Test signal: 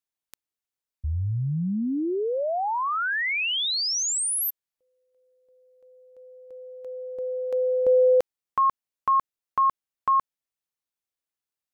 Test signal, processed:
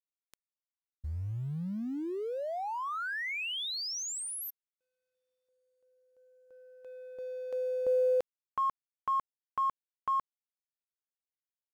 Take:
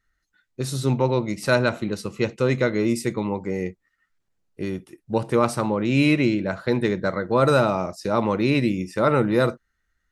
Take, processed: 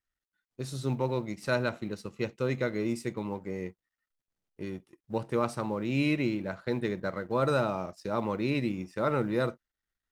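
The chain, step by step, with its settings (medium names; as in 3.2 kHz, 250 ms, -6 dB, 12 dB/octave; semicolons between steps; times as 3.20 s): companding laws mixed up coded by A; treble shelf 9.1 kHz -5.5 dB; trim -8.5 dB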